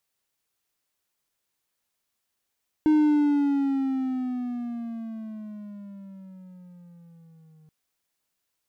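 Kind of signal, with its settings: gliding synth tone triangle, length 4.83 s, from 309 Hz, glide -12 st, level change -36.5 dB, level -13.5 dB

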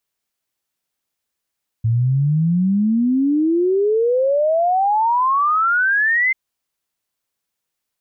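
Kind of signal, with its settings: log sweep 110 Hz -> 2.1 kHz 4.49 s -13.5 dBFS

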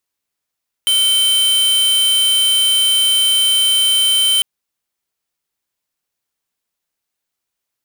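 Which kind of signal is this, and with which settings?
tone square 3.09 kHz -13.5 dBFS 3.55 s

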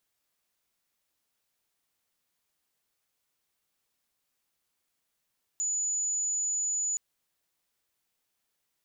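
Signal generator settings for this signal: tone sine 6.93 kHz -27 dBFS 1.37 s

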